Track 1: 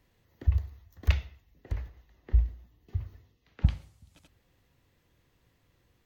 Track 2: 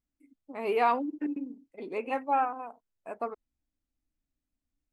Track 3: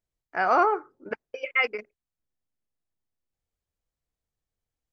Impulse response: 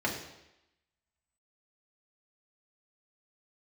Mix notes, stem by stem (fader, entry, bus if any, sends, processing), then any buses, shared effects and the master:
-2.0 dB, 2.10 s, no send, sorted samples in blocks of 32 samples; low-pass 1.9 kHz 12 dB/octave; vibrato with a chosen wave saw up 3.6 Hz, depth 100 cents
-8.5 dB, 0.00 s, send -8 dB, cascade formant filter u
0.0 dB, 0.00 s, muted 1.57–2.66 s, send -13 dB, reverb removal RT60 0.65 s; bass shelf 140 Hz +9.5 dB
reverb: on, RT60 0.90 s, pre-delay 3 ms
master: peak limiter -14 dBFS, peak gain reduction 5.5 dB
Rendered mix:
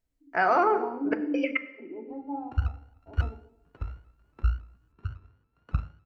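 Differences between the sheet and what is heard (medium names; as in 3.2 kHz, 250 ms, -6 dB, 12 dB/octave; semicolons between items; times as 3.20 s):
stem 2 -8.5 dB -> 0.0 dB; stem 3: missing reverb removal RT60 0.65 s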